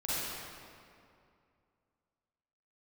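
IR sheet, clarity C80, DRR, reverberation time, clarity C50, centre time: -3.0 dB, -10.5 dB, 2.4 s, -7.5 dB, 183 ms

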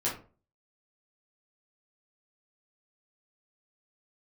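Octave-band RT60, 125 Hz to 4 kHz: 0.45 s, 0.40 s, 0.40 s, 0.35 s, 0.30 s, 0.20 s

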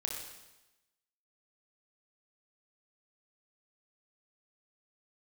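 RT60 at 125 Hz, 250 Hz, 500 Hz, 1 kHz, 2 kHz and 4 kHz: 1.0 s, 1.0 s, 1.0 s, 1.0 s, 1.0 s, 1.0 s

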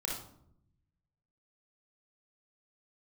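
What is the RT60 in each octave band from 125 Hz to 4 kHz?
1.6 s, 1.1 s, 0.80 s, 0.65 s, 0.45 s, 0.40 s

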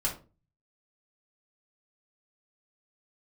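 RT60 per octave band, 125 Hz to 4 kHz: 0.70 s, 0.45 s, 0.40 s, 0.30 s, 0.25 s, 0.20 s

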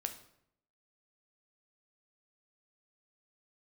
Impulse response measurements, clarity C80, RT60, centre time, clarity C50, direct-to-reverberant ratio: 14.5 dB, 0.70 s, 11 ms, 11.0 dB, 6.0 dB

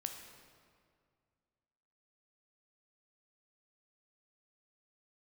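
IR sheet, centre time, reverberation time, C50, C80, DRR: 41 ms, 2.1 s, 6.0 dB, 7.0 dB, 4.5 dB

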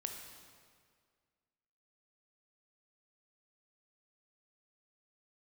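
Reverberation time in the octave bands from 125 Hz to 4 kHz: 2.0 s, 2.0 s, 2.0 s, 1.9 s, 1.8 s, 1.6 s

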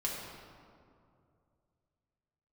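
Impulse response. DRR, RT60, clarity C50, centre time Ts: -5.0 dB, 2.4 s, 0.5 dB, 98 ms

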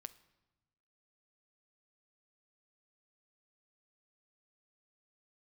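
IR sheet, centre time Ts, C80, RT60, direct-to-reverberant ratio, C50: 3 ms, 20.0 dB, 1.1 s, 13.0 dB, 17.5 dB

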